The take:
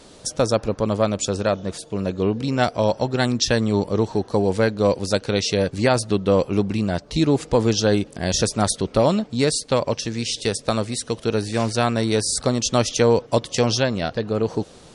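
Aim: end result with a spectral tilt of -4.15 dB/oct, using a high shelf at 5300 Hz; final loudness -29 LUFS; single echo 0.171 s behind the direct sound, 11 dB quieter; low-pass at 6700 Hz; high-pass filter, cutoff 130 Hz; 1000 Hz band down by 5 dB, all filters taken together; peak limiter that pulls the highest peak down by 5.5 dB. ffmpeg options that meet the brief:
-af "highpass=130,lowpass=6.7k,equalizer=f=1k:t=o:g=-7.5,highshelf=f=5.3k:g=6,alimiter=limit=-10dB:level=0:latency=1,aecho=1:1:171:0.282,volume=-6dB"

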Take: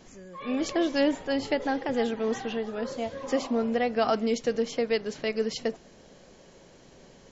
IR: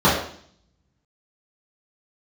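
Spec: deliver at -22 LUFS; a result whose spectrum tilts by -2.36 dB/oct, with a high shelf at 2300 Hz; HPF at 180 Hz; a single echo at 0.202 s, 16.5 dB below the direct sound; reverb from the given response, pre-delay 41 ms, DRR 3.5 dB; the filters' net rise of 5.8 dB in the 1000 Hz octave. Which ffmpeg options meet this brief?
-filter_complex "[0:a]highpass=180,equalizer=f=1k:t=o:g=8,highshelf=f=2.3k:g=3,aecho=1:1:202:0.15,asplit=2[a][b];[1:a]atrim=start_sample=2205,adelay=41[c];[b][c]afir=irnorm=-1:irlink=0,volume=-27dB[d];[a][d]amix=inputs=2:normalize=0,volume=2dB"

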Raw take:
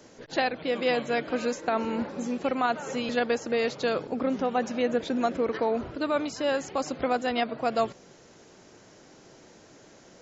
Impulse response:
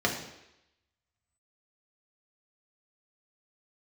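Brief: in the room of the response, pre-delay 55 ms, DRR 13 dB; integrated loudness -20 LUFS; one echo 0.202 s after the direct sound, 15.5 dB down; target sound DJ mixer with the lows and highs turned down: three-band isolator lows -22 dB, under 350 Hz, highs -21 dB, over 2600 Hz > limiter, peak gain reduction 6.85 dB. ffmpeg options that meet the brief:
-filter_complex "[0:a]aecho=1:1:202:0.168,asplit=2[a][b];[1:a]atrim=start_sample=2205,adelay=55[c];[b][c]afir=irnorm=-1:irlink=0,volume=-24.5dB[d];[a][d]amix=inputs=2:normalize=0,acrossover=split=350 2600:gain=0.0794 1 0.0891[e][f][g];[e][f][g]amix=inputs=3:normalize=0,volume=12.5dB,alimiter=limit=-8.5dB:level=0:latency=1"

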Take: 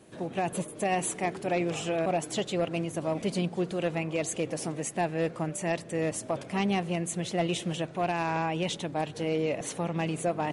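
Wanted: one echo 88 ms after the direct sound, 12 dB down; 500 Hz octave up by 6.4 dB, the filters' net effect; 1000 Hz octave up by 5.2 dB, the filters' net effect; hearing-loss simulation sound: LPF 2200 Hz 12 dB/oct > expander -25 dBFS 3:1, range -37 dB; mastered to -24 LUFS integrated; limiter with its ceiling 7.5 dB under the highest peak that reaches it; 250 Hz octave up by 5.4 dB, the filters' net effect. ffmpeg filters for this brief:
-af "equalizer=f=250:t=o:g=6.5,equalizer=f=500:t=o:g=5,equalizer=f=1k:t=o:g=4.5,alimiter=limit=-19.5dB:level=0:latency=1,lowpass=2.2k,aecho=1:1:88:0.251,agate=range=-37dB:threshold=-25dB:ratio=3,volume=7dB"

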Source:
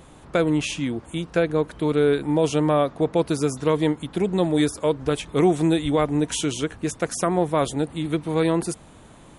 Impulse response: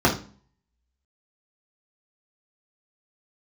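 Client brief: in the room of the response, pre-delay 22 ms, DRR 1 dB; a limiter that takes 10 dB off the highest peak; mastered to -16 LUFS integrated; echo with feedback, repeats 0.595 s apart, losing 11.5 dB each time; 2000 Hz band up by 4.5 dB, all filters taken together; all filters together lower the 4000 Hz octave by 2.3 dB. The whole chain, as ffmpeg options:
-filter_complex "[0:a]equalizer=f=2k:t=o:g=7.5,equalizer=f=4k:t=o:g=-6,alimiter=limit=-16.5dB:level=0:latency=1,aecho=1:1:595|1190|1785:0.266|0.0718|0.0194,asplit=2[a][b];[1:a]atrim=start_sample=2205,adelay=22[c];[b][c]afir=irnorm=-1:irlink=0,volume=-20dB[d];[a][d]amix=inputs=2:normalize=0,volume=5.5dB"

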